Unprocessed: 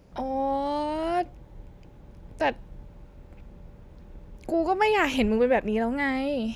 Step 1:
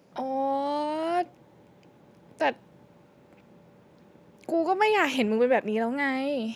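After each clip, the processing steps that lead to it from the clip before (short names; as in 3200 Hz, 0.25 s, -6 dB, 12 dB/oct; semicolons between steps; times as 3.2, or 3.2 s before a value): Bessel high-pass 200 Hz, order 4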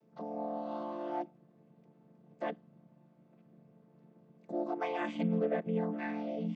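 chord vocoder minor triad, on D3; gain -8.5 dB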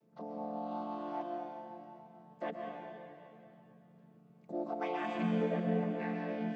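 plate-style reverb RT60 2.8 s, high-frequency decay 0.95×, pre-delay 0.11 s, DRR 0.5 dB; gain -2.5 dB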